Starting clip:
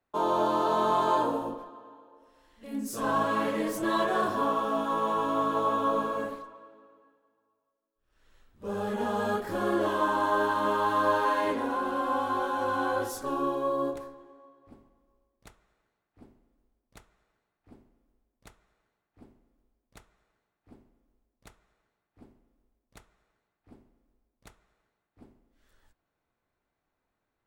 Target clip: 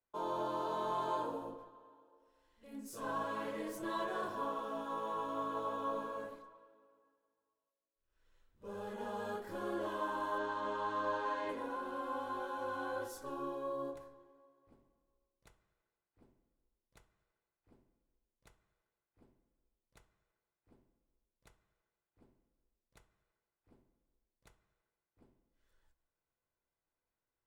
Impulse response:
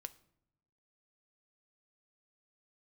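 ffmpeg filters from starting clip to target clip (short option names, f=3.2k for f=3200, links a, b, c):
-filter_complex "[0:a]asettb=1/sr,asplit=3[a][b][c];[a]atrim=end=10.384[d];[b]atrim=start=10.38:end=11.49,asetpts=PTS-STARTPTS,afade=t=in:d=0.004:c=qsin,afade=t=out:st=1.106:d=0.004:c=qsin,lowpass=f=7.5k:w=0.5412,lowpass=f=7.5k:w=1.3066[e];[c]atrim=start=11.486[f];[d][e]acrossfade=d=0.004:c1=hsin:c2=qsin[g];[g][f]acrossfade=d=0.004:c1=qsin:c2=hsin[h];[1:a]atrim=start_sample=2205,afade=t=out:st=0.33:d=0.01,atrim=end_sample=14994[i];[h][i]afir=irnorm=-1:irlink=0,volume=-7dB"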